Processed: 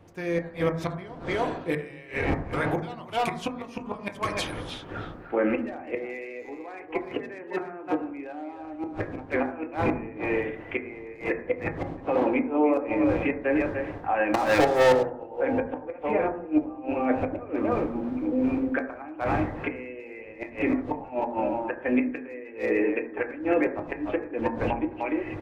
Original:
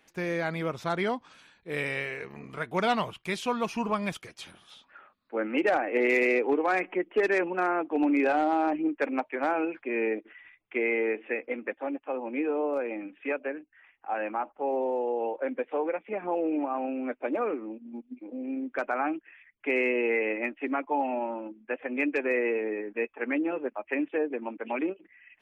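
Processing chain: wind noise 510 Hz -42 dBFS; dynamic EQ 1400 Hz, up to -6 dB, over -49 dBFS, Q 6.3; speakerphone echo 0.3 s, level -9 dB; flipped gate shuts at -20 dBFS, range -26 dB; AGC gain up to 15 dB; limiter -12.5 dBFS, peak gain reduction 8.5 dB; 7.01–8 HPF 120 Hz 24 dB/oct; 14.34–15.03 sample leveller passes 5; reverb RT60 0.70 s, pre-delay 5 ms, DRR 4.5 dB; gain -4.5 dB

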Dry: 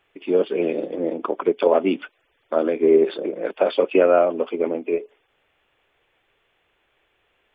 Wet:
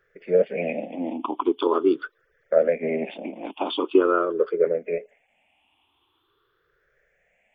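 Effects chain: moving spectral ripple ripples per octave 0.57, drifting +0.44 Hz, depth 22 dB; gain -6 dB

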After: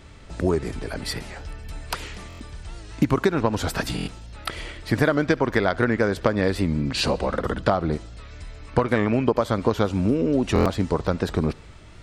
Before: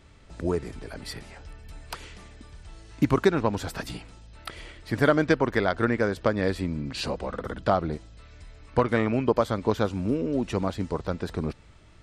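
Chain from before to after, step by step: compressor 6:1, threshold -24 dBFS, peak gain reduction 10 dB; on a send: thinning echo 72 ms, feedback 66%, level -24 dB; on the sum: stuck buffer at 2.28/3.96/10.54, samples 1024, times 4; record warp 78 rpm, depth 100 cents; gain +8 dB

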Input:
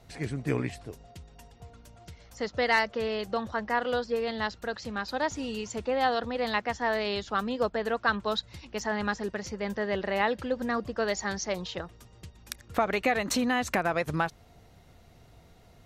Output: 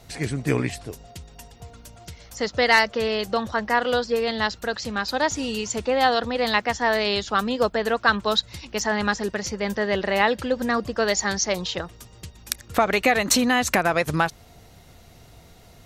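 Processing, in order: high shelf 3600 Hz +7.5 dB; gain +6 dB

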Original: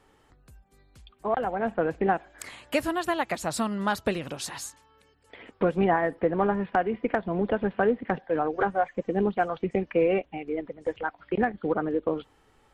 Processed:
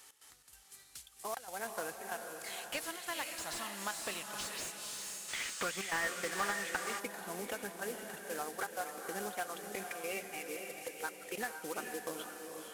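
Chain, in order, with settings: CVSD 64 kbps; HPF 49 Hz; pre-emphasis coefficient 0.97; compressor 2:1, threshold -58 dBFS, peak gain reduction 14.5 dB; step gate "x.xx.xxxx" 142 bpm -12 dB; diffused feedback echo 0.493 s, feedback 44%, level -5 dB; spectral gain 5.29–6.99, 1100–9200 Hz +8 dB; slew limiter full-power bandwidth 12 Hz; gain +14.5 dB

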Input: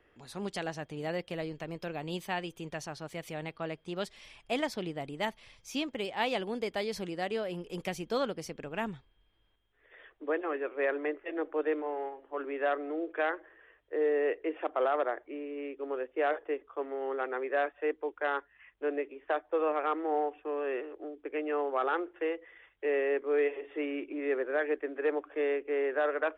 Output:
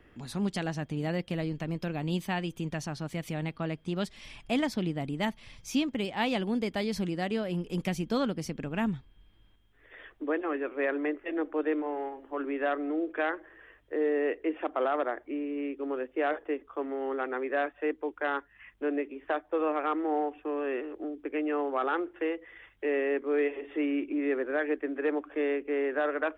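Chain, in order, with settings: resonant low shelf 330 Hz +6.5 dB, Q 1.5; in parallel at -1 dB: compressor, threshold -43 dBFS, peak gain reduction 17.5 dB

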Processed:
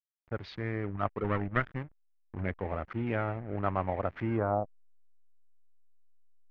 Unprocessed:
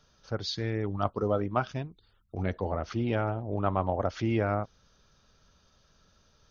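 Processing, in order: 1.24–2.44 minimum comb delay 0.6 ms; backlash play -36 dBFS; low-pass sweep 2100 Hz -> 190 Hz, 4.21–5.09; gain -3.5 dB

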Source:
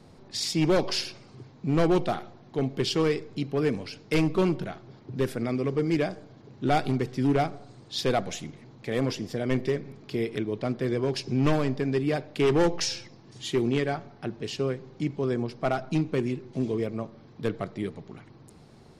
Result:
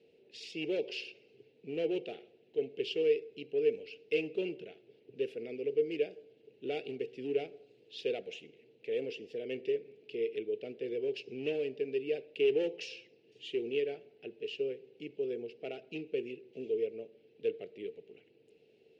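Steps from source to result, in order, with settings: double band-pass 1100 Hz, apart 2.6 oct

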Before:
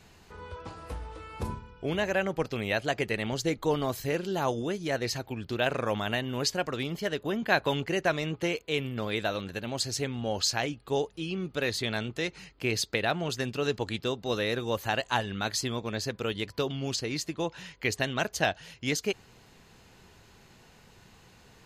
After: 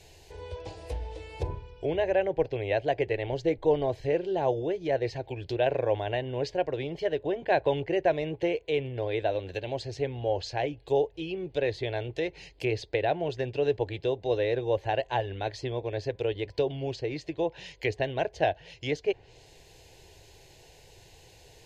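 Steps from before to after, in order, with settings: treble ducked by the level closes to 1900 Hz, closed at -29 dBFS; fixed phaser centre 520 Hz, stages 4; gain +5 dB

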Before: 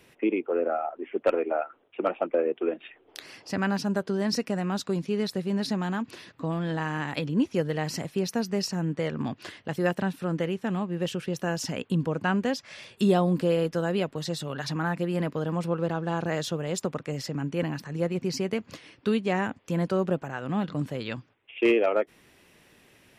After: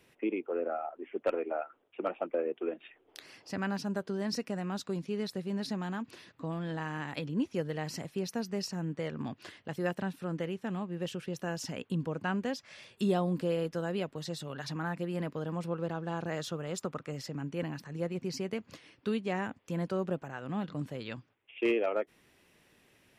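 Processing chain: 16.39–17.18 bell 1300 Hz +6.5 dB 0.34 oct; gain -7 dB

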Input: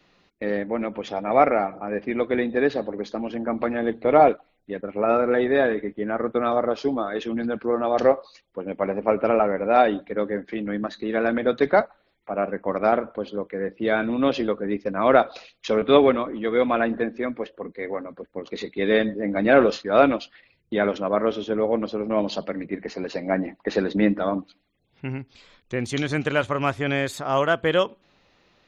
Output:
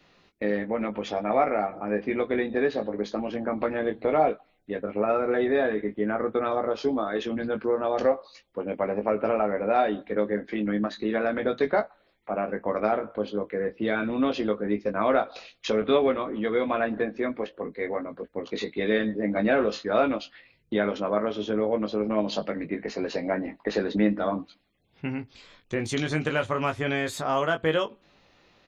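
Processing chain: compressor 2:1, threshold -25 dBFS, peak gain reduction 9 dB; doubler 19 ms -6 dB

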